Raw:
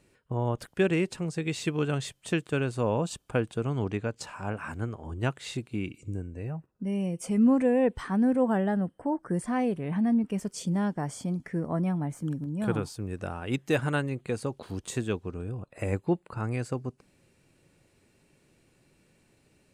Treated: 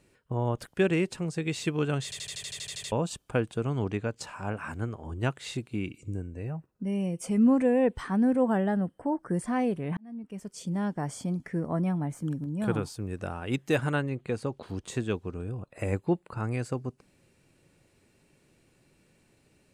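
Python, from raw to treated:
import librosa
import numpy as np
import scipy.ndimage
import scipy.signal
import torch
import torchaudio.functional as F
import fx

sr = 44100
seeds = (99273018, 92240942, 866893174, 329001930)

y = fx.high_shelf(x, sr, hz=fx.line((13.92, 5800.0), (15.08, 9000.0)), db=-10.0, at=(13.92, 15.08), fade=0.02)
y = fx.edit(y, sr, fx.stutter_over(start_s=2.04, slice_s=0.08, count=11),
    fx.fade_in_span(start_s=9.97, length_s=1.09), tone=tone)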